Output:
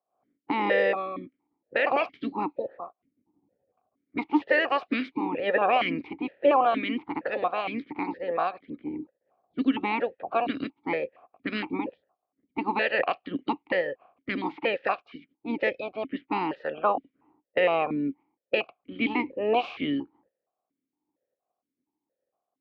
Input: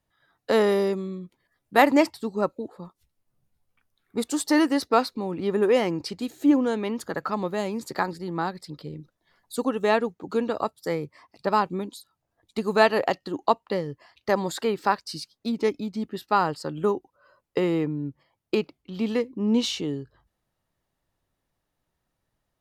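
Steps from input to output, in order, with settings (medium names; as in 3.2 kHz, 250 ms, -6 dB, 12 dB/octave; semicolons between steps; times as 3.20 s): spectral peaks clipped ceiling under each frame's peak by 24 dB; distance through air 320 m; level-controlled noise filter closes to 710 Hz, open at -22.5 dBFS; loudness maximiser +13 dB; stepped vowel filter 4.3 Hz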